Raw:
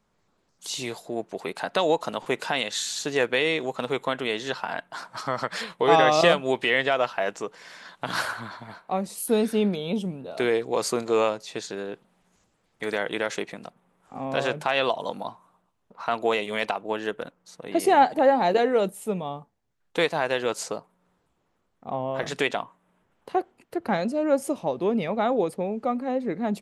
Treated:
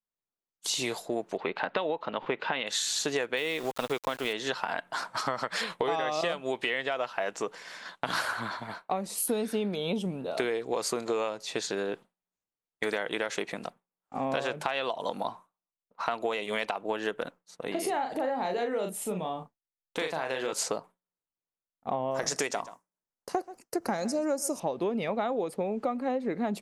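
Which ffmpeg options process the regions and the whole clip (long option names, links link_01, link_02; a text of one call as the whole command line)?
ffmpeg -i in.wav -filter_complex "[0:a]asettb=1/sr,asplit=3[link_01][link_02][link_03];[link_01]atrim=end=1.374[link_04];[link_02]atrim=start=1.37:end=2.67,asetpts=PTS-STARTPTS,afade=type=in:duration=0.004:curve=qsin,afade=type=out:start_time=1.296:duration=0.004:curve=qsin,lowpass=frequency=3400:width=0.5412,lowpass=frequency=3400:width=1.3066,bandreject=frequency=700:width=13[link_05];[link_03]atrim=start=2.666[link_06];[link_04][link_05]acrossfade=duration=0.004:curve1=hsin:curve2=qsin[link_07];[link_07][link_06]acrossfade=duration=0.004:curve1=qsin:curve2=hsin,asettb=1/sr,asplit=3[link_08][link_09][link_10];[link_08]atrim=end=3.374[link_11];[link_09]atrim=start=3.37:end=4.33,asetpts=PTS-STARTPTS,afade=type=in:duration=0.004:curve=qsin,afade=type=out:start_time=0.956:duration=0.004:curve=qsin,aeval=exprs='val(0)*gte(abs(val(0)),0.015)':channel_layout=same,highshelf=frequency=10000:gain=4.5[link_12];[link_10]atrim=start=4.326[link_13];[link_11][link_12]acrossfade=duration=0.004:curve1=hsin:curve2=qsin[link_14];[link_14][link_13]acrossfade=duration=0.004:curve1=qsin:curve2=hsin,asettb=1/sr,asplit=3[link_15][link_16][link_17];[link_15]atrim=end=17.714[link_18];[link_16]atrim=start=17.71:end=20.53,asetpts=PTS-STARTPTS,afade=type=in:duration=0.004:curve=qsin,afade=type=out:start_time=2.816:duration=0.004:curve=qsin,acompressor=threshold=-34dB:ratio=2.5:attack=3.2:release=140:knee=1:detection=peak,asplit=2[link_19][link_20];[link_20]adelay=38,volume=-5.5dB[link_21];[link_19][link_21]amix=inputs=2:normalize=0,atrim=end_sample=124362[link_22];[link_17]atrim=start=20.526[link_23];[link_18][link_22]acrossfade=duration=0.004:curve1=hsin:curve2=qsin[link_24];[link_24][link_23]acrossfade=duration=0.004:curve1=qsin:curve2=hsin,asettb=1/sr,asplit=3[link_25][link_26][link_27];[link_25]atrim=end=22.114[link_28];[link_26]atrim=start=22.11:end=24.6,asetpts=PTS-STARTPTS,afade=type=in:duration=0.004:curve=qsin,afade=type=out:start_time=2.486:duration=0.004:curve=qsin,highshelf=frequency=4400:width_type=q:width=3:gain=8.5,aecho=1:1:130:0.1,atrim=end_sample=109809[link_29];[link_27]atrim=start=24.596[link_30];[link_28][link_29]acrossfade=duration=0.004:curve1=hsin:curve2=qsin[link_31];[link_31][link_30]acrossfade=duration=0.004:curve1=qsin:curve2=hsin,agate=range=-33dB:threshold=-41dB:ratio=3:detection=peak,equalizer=frequency=86:width=0.45:gain=-5.5,acompressor=threshold=-30dB:ratio=12,volume=4dB" out.wav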